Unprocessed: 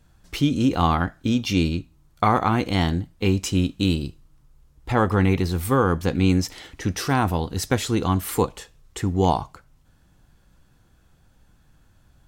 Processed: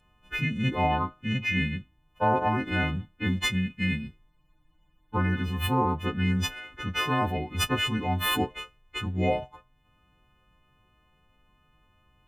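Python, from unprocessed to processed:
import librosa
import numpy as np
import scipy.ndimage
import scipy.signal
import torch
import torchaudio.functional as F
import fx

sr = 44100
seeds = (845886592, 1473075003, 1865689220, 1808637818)

y = fx.freq_snap(x, sr, grid_st=3)
y = fx.formant_shift(y, sr, semitones=-5)
y = fx.spec_freeze(y, sr, seeds[0], at_s=4.31, hold_s=0.84)
y = y * 10.0 ** (-6.5 / 20.0)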